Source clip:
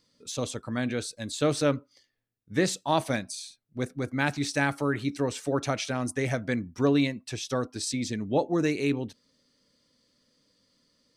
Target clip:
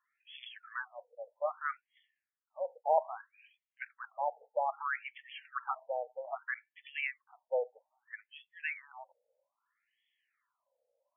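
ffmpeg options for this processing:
ffmpeg -i in.wav -af "afftfilt=real='re*between(b*sr/1024,620*pow(2500/620,0.5+0.5*sin(2*PI*0.62*pts/sr))/1.41,620*pow(2500/620,0.5+0.5*sin(2*PI*0.62*pts/sr))*1.41)':imag='im*between(b*sr/1024,620*pow(2500/620,0.5+0.5*sin(2*PI*0.62*pts/sr))/1.41,620*pow(2500/620,0.5+0.5*sin(2*PI*0.62*pts/sr))*1.41)':win_size=1024:overlap=0.75" out.wav

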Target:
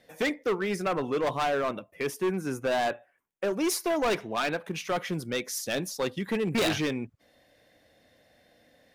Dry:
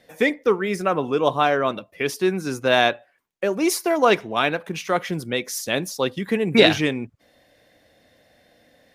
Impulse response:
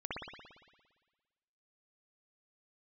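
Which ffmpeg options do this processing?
-filter_complex "[0:a]asettb=1/sr,asplit=3[link_01][link_02][link_03];[link_01]atrim=end=1.514[link_04];[link_02]atrim=start=1.51:end=3.44,asetpts=PTS-STARTPTS,afade=type=in:duration=0.004:curve=qsin,afade=type=out:start_time=1.926:duration=0.004:curve=qsin,equalizer=frequency=4300:width=1.7:gain=-11.5[link_05];[link_03]atrim=start=3.436[link_06];[link_04][link_05]acrossfade=duration=0.004:curve1=hsin:curve2=qsin[link_07];[link_07][link_06]acrossfade=duration=0.004:curve1=qsin:curve2=hsin,asoftclip=type=hard:threshold=-18.5dB,volume=-4.5dB"

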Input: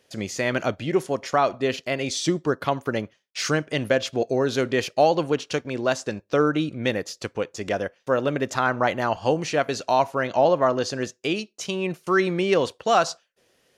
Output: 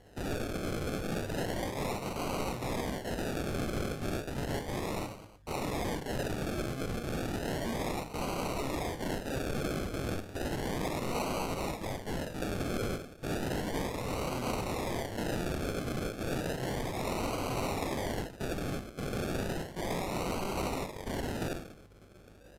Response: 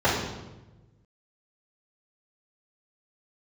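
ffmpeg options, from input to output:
-filter_complex "[0:a]flanger=delay=16.5:depth=5.5:speed=2,highshelf=frequency=5800:gain=3,areverse,acompressor=threshold=-30dB:ratio=8,areverse,aeval=exprs='val(0)+0.000398*(sin(2*PI*50*n/s)+sin(2*PI*2*50*n/s)/2+sin(2*PI*3*50*n/s)/3+sin(2*PI*4*50*n/s)/4+sin(2*PI*5*50*n/s)/5)':channel_layout=same,asplit=2[link_01][link_02];[link_02]adelay=18,volume=-11.5dB[link_03];[link_01][link_03]amix=inputs=2:normalize=0,atempo=0.61,alimiter=level_in=4.5dB:limit=-24dB:level=0:latency=1:release=51,volume=-4.5dB,aeval=exprs='(mod(84.1*val(0)+1,2)-1)/84.1':channel_layout=same,equalizer=frequency=8000:width_type=o:width=0.3:gain=-13,aecho=1:1:30|72|130.8|213.1|328.4:0.631|0.398|0.251|0.158|0.1,acrusher=samples=36:mix=1:aa=0.000001:lfo=1:lforange=21.6:lforate=0.33,volume=8dB" -ar 32000 -c:a libvorbis -b:a 128k

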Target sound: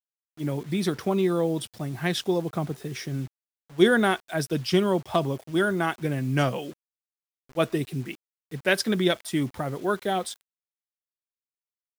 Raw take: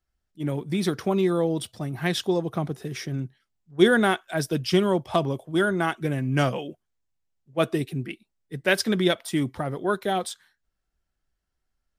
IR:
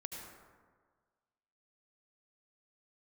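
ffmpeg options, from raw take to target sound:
-af "acrusher=bits=7:mix=0:aa=0.000001,volume=-1dB"

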